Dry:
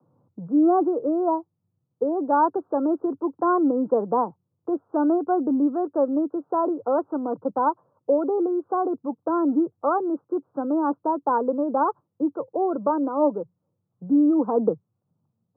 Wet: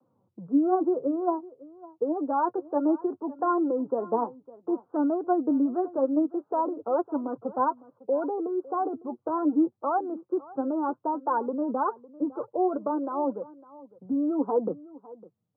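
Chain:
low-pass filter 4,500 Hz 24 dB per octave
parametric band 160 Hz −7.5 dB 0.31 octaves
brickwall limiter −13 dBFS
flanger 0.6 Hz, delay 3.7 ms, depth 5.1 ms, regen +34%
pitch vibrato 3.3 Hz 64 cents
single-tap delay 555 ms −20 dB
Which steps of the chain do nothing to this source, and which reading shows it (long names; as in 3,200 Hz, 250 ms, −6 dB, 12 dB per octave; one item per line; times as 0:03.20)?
low-pass filter 4,500 Hz: nothing at its input above 1,500 Hz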